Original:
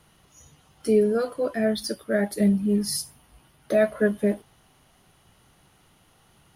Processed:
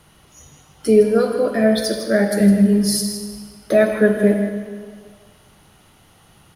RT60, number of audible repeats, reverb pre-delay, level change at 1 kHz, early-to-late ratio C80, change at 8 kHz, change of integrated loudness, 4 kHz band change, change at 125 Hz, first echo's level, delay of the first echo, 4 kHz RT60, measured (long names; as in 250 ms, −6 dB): 1.8 s, 1, 39 ms, +7.5 dB, 6.0 dB, +7.5 dB, +7.5 dB, +7.5 dB, +8.5 dB, −10.5 dB, 159 ms, 1.5 s